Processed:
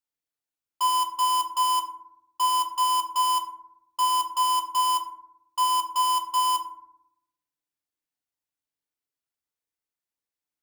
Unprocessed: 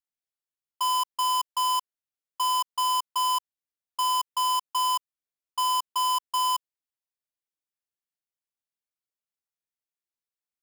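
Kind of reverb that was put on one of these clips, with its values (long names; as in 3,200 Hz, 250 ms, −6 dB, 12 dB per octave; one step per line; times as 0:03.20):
feedback delay network reverb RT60 0.76 s, low-frequency decay 1.45×, high-frequency decay 0.4×, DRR 2.5 dB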